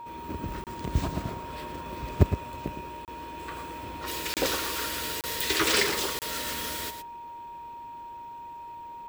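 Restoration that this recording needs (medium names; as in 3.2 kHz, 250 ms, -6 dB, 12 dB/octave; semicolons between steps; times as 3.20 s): band-stop 940 Hz, Q 30; interpolate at 0.64/3.05/4.34/5.21/6.19 s, 28 ms; inverse comb 113 ms -9 dB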